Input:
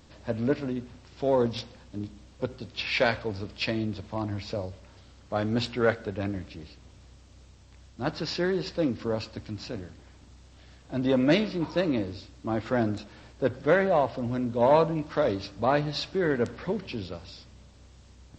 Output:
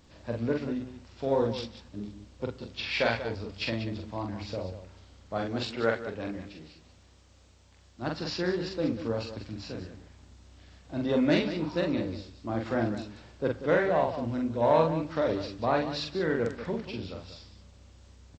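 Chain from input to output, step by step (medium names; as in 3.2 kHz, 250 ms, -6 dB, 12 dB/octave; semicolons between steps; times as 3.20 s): 5.42–8.02 s: bass shelf 200 Hz -7 dB; loudspeakers at several distances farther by 15 m -3 dB, 65 m -11 dB; trim -4 dB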